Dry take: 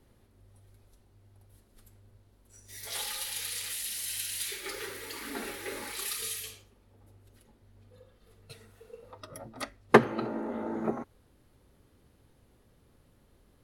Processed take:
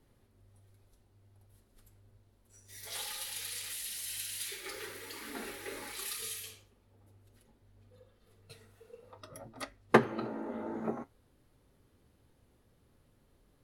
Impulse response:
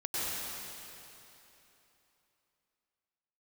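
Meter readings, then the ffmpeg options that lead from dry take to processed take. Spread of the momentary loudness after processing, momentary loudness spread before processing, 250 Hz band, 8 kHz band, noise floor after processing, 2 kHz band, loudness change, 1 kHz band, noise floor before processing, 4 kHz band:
21 LU, 21 LU, -4.0 dB, -4.5 dB, -69 dBFS, -4.0 dB, -4.5 dB, -4.5 dB, -64 dBFS, -4.5 dB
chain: -af "flanger=delay=6.4:depth=5.5:regen=-67:speed=0.52:shape=triangular"

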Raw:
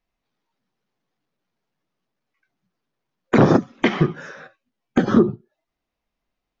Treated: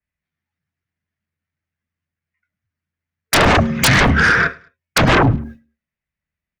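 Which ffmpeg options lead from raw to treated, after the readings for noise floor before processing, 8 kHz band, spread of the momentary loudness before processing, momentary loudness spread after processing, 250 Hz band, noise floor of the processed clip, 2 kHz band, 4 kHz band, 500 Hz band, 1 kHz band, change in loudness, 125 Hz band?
-82 dBFS, n/a, 8 LU, 8 LU, -0.5 dB, under -85 dBFS, +15.5 dB, +16.0 dB, +1.0 dB, +9.5 dB, +5.0 dB, +6.0 dB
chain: -af "bandreject=f=156.8:t=h:w=4,bandreject=f=313.6:t=h:w=4,bandreject=f=470.4:t=h:w=4,bandreject=f=627.2:t=h:w=4,agate=range=-33dB:threshold=-42dB:ratio=3:detection=peak,equalizer=f=125:t=o:w=1:g=-7,equalizer=f=250:t=o:w=1:g=10,equalizer=f=500:t=o:w=1:g=-6,equalizer=f=1k:t=o:w=1:g=-6,equalizer=f=2k:t=o:w=1:g=11,equalizer=f=4k:t=o:w=1:g=-5,acompressor=threshold=-23dB:ratio=4,aeval=exprs='0.282*sin(PI/2*8.91*val(0)/0.282)':c=same,afreqshift=-86,aecho=1:1:105|210:0.0631|0.0196,adynamicequalizer=threshold=0.0355:dfrequency=3100:dqfactor=0.7:tfrequency=3100:tqfactor=0.7:attack=5:release=100:ratio=0.375:range=2.5:mode=cutabove:tftype=highshelf,volume=2.5dB"

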